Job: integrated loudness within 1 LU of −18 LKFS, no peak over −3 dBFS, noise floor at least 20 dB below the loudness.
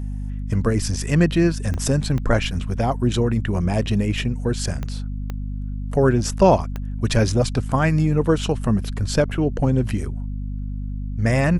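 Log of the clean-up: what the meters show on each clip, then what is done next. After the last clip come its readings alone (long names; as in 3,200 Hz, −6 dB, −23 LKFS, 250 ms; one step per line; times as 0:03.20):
number of clicks 5; mains hum 50 Hz; hum harmonics up to 250 Hz; level of the hum −25 dBFS; integrated loudness −22.0 LKFS; sample peak −3.0 dBFS; target loudness −18.0 LKFS
→ click removal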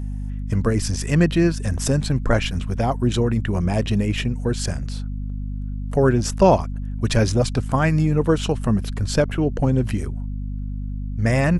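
number of clicks 0; mains hum 50 Hz; hum harmonics up to 250 Hz; level of the hum −25 dBFS
→ hum removal 50 Hz, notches 5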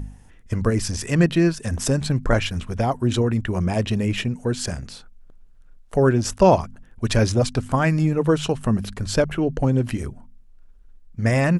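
mains hum none found; integrated loudness −22.0 LKFS; sample peak −3.0 dBFS; target loudness −18.0 LKFS
→ level +4 dB
brickwall limiter −3 dBFS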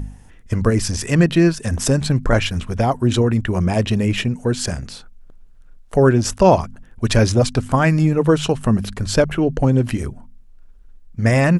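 integrated loudness −18.0 LKFS; sample peak −3.0 dBFS; background noise floor −44 dBFS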